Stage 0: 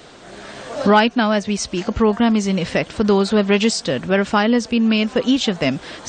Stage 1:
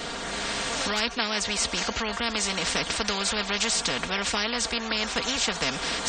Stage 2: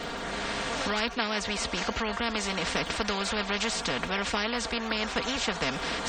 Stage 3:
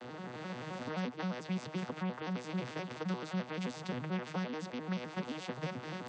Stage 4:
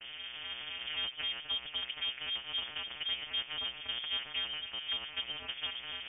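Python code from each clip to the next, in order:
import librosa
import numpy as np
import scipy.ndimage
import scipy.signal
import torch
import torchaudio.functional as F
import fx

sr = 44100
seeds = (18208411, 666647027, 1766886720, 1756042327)

y1 = x + 0.74 * np.pad(x, (int(4.3 * sr / 1000.0), 0))[:len(x)]
y1 = fx.spectral_comp(y1, sr, ratio=4.0)
y1 = F.gain(torch.from_numpy(y1), -8.5).numpy()
y2 = fx.high_shelf(y1, sr, hz=4400.0, db=-11.5)
y2 = fx.dmg_crackle(y2, sr, seeds[0], per_s=25.0, level_db=-40.0)
y3 = fx.vocoder_arp(y2, sr, chord='major triad', root=47, every_ms=87)
y3 = F.gain(torch.from_numpy(y3), -7.5).numpy()
y4 = fx.freq_invert(y3, sr, carrier_hz=3400)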